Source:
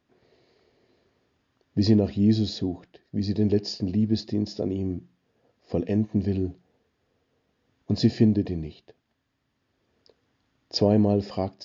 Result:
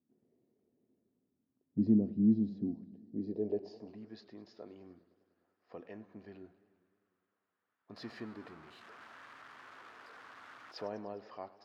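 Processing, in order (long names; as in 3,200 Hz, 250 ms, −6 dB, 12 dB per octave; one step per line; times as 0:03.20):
0:07.96–0:10.87: converter with a step at zero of −33.5 dBFS
band-pass filter sweep 230 Hz → 1,300 Hz, 0:02.95–0:04.07
feedback echo with a swinging delay time 101 ms, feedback 73%, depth 153 cents, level −19 dB
level −4.5 dB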